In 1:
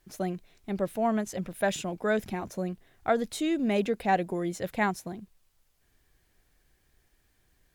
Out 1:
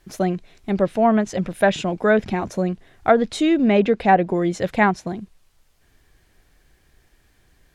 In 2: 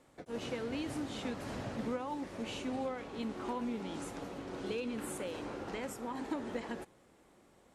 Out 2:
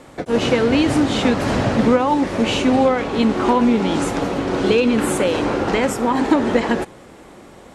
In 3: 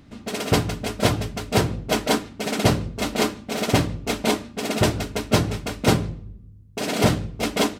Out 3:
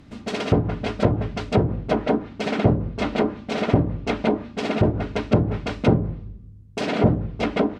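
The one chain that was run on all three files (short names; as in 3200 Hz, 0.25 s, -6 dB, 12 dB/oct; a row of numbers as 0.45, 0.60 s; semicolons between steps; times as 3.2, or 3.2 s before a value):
treble ducked by the level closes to 610 Hz, closed at -16 dBFS; high shelf 7400 Hz -6 dB; normalise peaks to -3 dBFS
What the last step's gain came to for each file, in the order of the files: +10.5, +22.0, +2.0 dB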